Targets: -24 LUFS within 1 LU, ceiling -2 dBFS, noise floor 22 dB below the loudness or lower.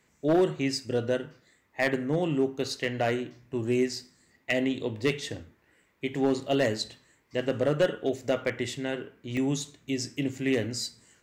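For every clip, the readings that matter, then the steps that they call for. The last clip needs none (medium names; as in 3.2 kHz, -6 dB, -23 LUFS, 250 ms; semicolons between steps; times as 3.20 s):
clipped samples 0.4%; clipping level -17.0 dBFS; dropouts 4; longest dropout 1.6 ms; loudness -29.5 LUFS; peak level -17.0 dBFS; loudness target -24.0 LUFS
-> clip repair -17 dBFS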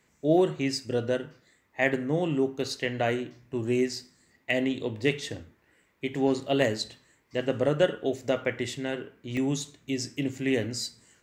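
clipped samples 0.0%; dropouts 4; longest dropout 1.6 ms
-> interpolate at 1.94/2.85/3.93/9.37 s, 1.6 ms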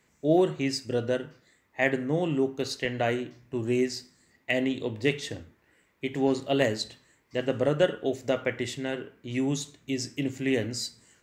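dropouts 0; loudness -29.0 LUFS; peak level -9.0 dBFS; loudness target -24.0 LUFS
-> trim +5 dB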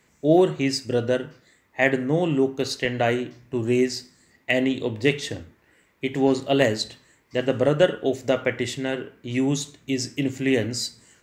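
loudness -24.0 LUFS; peak level -4.0 dBFS; noise floor -63 dBFS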